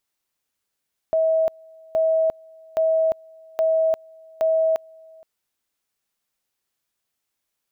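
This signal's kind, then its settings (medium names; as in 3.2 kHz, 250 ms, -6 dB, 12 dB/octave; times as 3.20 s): two-level tone 644 Hz -16 dBFS, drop 27.5 dB, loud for 0.35 s, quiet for 0.47 s, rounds 5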